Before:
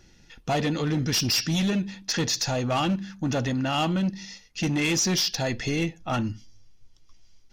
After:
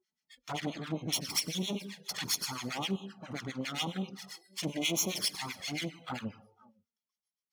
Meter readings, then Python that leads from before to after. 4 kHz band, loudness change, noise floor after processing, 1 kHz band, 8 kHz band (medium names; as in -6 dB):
-6.5 dB, -9.0 dB, under -85 dBFS, -11.5 dB, -6.5 dB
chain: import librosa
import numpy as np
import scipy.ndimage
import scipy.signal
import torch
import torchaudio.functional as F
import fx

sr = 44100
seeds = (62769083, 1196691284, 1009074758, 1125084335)

y = fx.lower_of_two(x, sr, delay_ms=0.92)
y = fx.high_shelf(y, sr, hz=5100.0, db=-4.0)
y = y + 10.0 ** (-23.5 / 20.0) * np.pad(y, (int(496 * sr / 1000.0), 0))[:len(y)]
y = fx.harmonic_tremolo(y, sr, hz=7.5, depth_pct=100, crossover_hz=1000.0)
y = scipy.signal.sosfilt(scipy.signal.butter(2, 130.0, 'highpass', fs=sr, output='sos'), y)
y = fx.rev_plate(y, sr, seeds[0], rt60_s=0.9, hf_ratio=0.95, predelay_ms=85, drr_db=15.5)
y = fx.env_flanger(y, sr, rest_ms=4.8, full_db=-27.5)
y = fx.noise_reduce_blind(y, sr, reduce_db=22)
y = fx.tilt_eq(y, sr, slope=2.0)